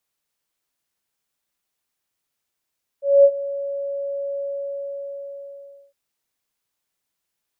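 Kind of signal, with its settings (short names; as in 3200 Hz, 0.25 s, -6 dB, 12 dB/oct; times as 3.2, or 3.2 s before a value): ADSR sine 560 Hz, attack 0.221 s, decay 62 ms, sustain -17.5 dB, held 1.37 s, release 1.54 s -6.5 dBFS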